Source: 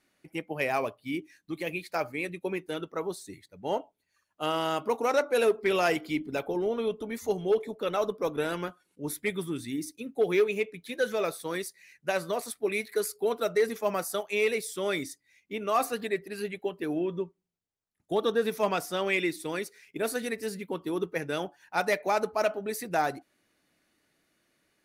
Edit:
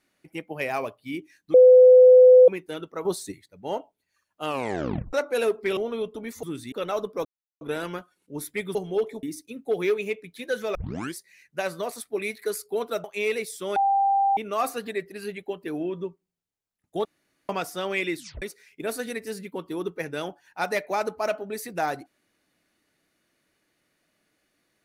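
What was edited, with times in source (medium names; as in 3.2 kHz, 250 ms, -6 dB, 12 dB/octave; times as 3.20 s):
1.54–2.48 s: bleep 506 Hz -8.5 dBFS
3.05–3.32 s: gain +8 dB
4.46 s: tape stop 0.67 s
5.77–6.63 s: delete
7.29–7.77 s: swap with 9.44–9.73 s
8.30 s: insert silence 0.36 s
11.25 s: tape start 0.42 s
13.54–14.20 s: delete
14.92–15.53 s: bleep 790 Hz -18 dBFS
18.21–18.65 s: room tone
19.33 s: tape stop 0.25 s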